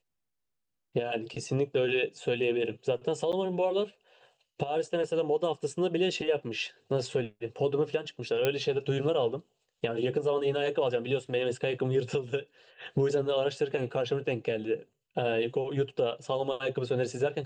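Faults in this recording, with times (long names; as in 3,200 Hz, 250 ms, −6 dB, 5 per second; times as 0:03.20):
0:03.32–0:03.33: drop-out 8.2 ms
0:08.45: click −13 dBFS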